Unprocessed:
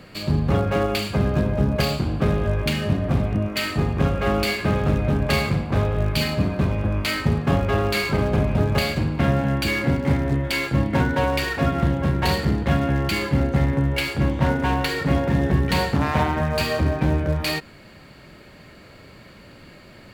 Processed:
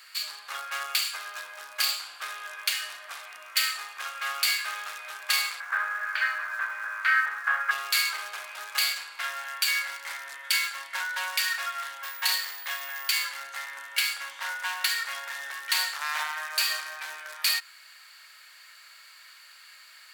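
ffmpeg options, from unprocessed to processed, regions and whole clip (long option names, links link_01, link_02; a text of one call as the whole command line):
ffmpeg -i in.wav -filter_complex "[0:a]asettb=1/sr,asplit=3[link_01][link_02][link_03];[link_01]atrim=end=5.604[link_04];[link_02]atrim=start=5.6:end=7.71,asetpts=PTS-STARTPTS,afade=type=in:duration=0.004:curve=qsin,afade=type=out:start_time=2.106:duration=0.004:curve=qsin,lowpass=frequency=1600:width_type=q:width=4.8,aeval=exprs='sgn(val(0))*max(abs(val(0))-0.00282,0)':channel_layout=same[link_05];[link_03]atrim=start=7.706[link_06];[link_04][link_05]acrossfade=duration=0.004:curve1=hsin:curve2=qsin[link_07];[link_07][link_06]acrossfade=duration=0.004:curve1=qsin:curve2=hsin,asettb=1/sr,asplit=3[link_08][link_09][link_10];[link_08]atrim=end=12.034[link_11];[link_09]atrim=start=12.03:end=13.25,asetpts=PTS-STARTPTS,afade=type=in:duration=0.004:curve=qsin,afade=type=out:start_time=1.216:duration=0.004:curve=qsin,bandreject=frequency=1400:width=19,aeval=exprs='val(0)+0.00447*sin(2*PI*15000*n/s)':channel_layout=same[link_12];[link_10]atrim=start=13.246[link_13];[link_11][link_12]acrossfade=duration=0.004:curve1=hsin:curve2=qsin[link_14];[link_14][link_13]acrossfade=duration=0.004:curve1=qsin:curve2=hsin,highpass=frequency=1500:width=0.5412,highpass=frequency=1500:width=1.3066,equalizer=frequency=2400:width_type=o:width=1.7:gain=-10,volume=8dB" out.wav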